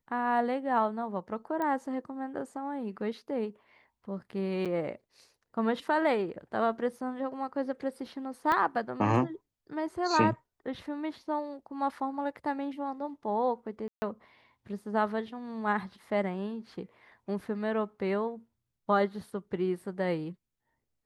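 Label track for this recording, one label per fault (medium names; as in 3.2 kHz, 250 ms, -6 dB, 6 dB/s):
1.620000	1.620000	pop -21 dBFS
4.650000	4.660000	dropout 7 ms
8.520000	8.520000	pop -16 dBFS
13.880000	14.020000	dropout 140 ms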